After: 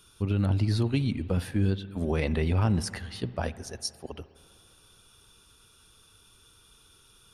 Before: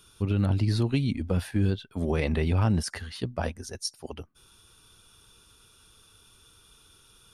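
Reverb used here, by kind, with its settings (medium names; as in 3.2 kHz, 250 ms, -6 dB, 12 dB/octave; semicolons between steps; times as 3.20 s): spring tank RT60 2.6 s, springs 51/56 ms, chirp 60 ms, DRR 16 dB; trim -1 dB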